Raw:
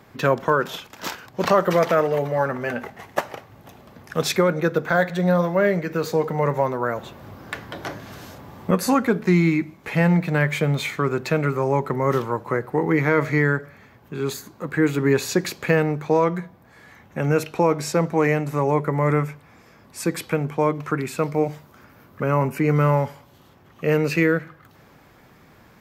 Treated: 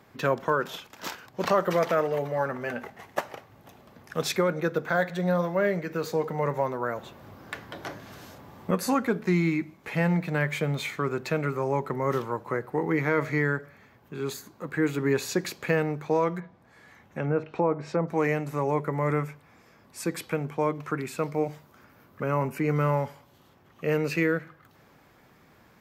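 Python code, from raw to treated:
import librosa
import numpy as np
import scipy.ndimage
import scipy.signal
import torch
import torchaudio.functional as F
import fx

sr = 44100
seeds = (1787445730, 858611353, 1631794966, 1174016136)

y = fx.env_lowpass_down(x, sr, base_hz=1300.0, full_db=-17.0, at=(16.39, 18.07), fade=0.02)
y = fx.low_shelf(y, sr, hz=140.0, db=-3.5)
y = y * librosa.db_to_amplitude(-5.5)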